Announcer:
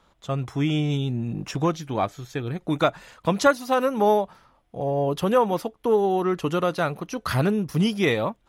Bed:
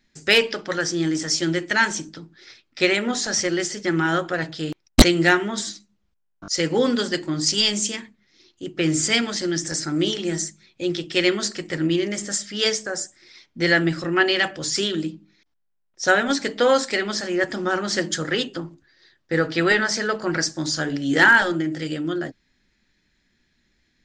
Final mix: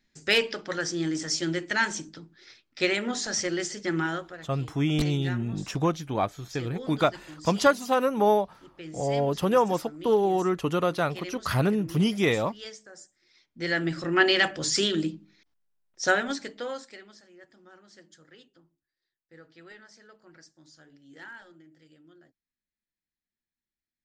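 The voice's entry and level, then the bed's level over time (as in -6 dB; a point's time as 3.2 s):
4.20 s, -2.0 dB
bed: 4.03 s -6 dB
4.43 s -20.5 dB
12.95 s -20.5 dB
14.25 s -1.5 dB
15.94 s -1.5 dB
17.32 s -30.5 dB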